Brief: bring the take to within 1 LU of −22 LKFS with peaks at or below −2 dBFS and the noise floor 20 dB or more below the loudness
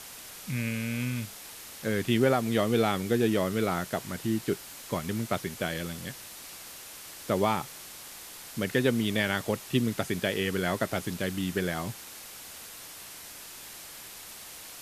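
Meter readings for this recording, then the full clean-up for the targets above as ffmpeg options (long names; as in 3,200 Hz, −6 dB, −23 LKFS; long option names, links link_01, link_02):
background noise floor −45 dBFS; target noise floor −50 dBFS; integrated loudness −29.5 LKFS; sample peak −11.5 dBFS; target loudness −22.0 LKFS
→ -af "afftdn=noise_reduction=6:noise_floor=-45"
-af "volume=7.5dB"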